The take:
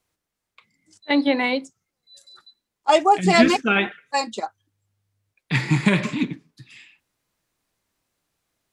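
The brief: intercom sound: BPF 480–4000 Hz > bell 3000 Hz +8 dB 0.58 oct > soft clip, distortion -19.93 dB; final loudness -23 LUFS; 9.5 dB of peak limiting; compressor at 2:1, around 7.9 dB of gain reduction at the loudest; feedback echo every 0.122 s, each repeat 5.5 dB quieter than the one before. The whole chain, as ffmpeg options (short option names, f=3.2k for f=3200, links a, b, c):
-af "acompressor=threshold=-25dB:ratio=2,alimiter=limit=-20dB:level=0:latency=1,highpass=480,lowpass=4k,equalizer=f=3k:t=o:w=0.58:g=8,aecho=1:1:122|244|366|488|610|732|854:0.531|0.281|0.149|0.079|0.0419|0.0222|0.0118,asoftclip=threshold=-21.5dB,volume=9.5dB"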